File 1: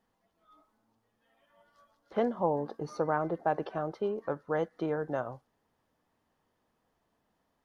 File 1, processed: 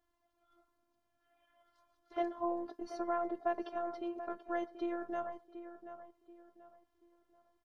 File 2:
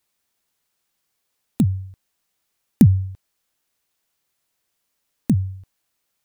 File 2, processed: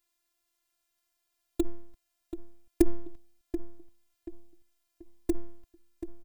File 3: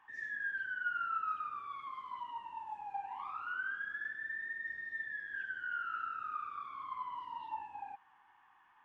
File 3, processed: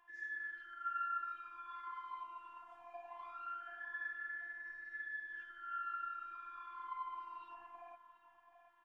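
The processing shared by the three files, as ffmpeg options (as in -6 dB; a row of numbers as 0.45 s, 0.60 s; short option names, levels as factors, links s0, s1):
-filter_complex "[0:a]lowshelf=f=100:g=6,bandreject=f=420:w=12,afftfilt=real='hypot(re,im)*cos(PI*b)':imag='0':win_size=512:overlap=0.75,asplit=2[s0][s1];[s1]adelay=733,lowpass=f=2200:p=1,volume=0.282,asplit=2[s2][s3];[s3]adelay=733,lowpass=f=2200:p=1,volume=0.34,asplit=2[s4][s5];[s5]adelay=733,lowpass=f=2200:p=1,volume=0.34,asplit=2[s6][s7];[s7]adelay=733,lowpass=f=2200:p=1,volume=0.34[s8];[s2][s4][s6][s8]amix=inputs=4:normalize=0[s9];[s0][s9]amix=inputs=2:normalize=0,volume=0.841"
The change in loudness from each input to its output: -6.0 LU, -15.0 LU, -5.0 LU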